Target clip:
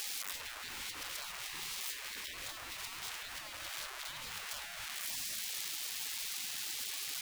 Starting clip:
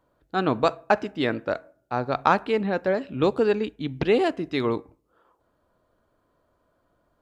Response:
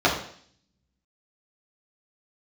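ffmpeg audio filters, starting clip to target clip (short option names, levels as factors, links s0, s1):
-af "aeval=exprs='val(0)+0.5*0.075*sgn(val(0))':c=same,acompressor=threshold=0.0398:ratio=3,afftfilt=real='re*lt(hypot(re,im),0.0251)':imag='im*lt(hypot(re,im),0.0251)':win_size=1024:overlap=0.75,volume=0.891"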